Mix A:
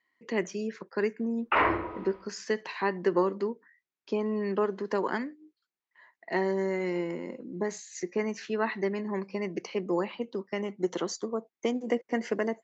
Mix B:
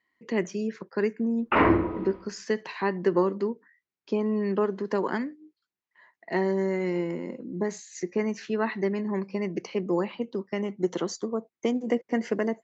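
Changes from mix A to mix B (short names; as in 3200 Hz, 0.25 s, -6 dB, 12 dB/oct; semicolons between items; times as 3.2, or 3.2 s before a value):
background: add bell 220 Hz +11.5 dB 1.6 oct; master: add low shelf 250 Hz +8 dB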